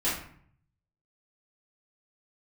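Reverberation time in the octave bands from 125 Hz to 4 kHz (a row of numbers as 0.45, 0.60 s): 1.1, 0.75, 0.55, 0.55, 0.55, 0.40 s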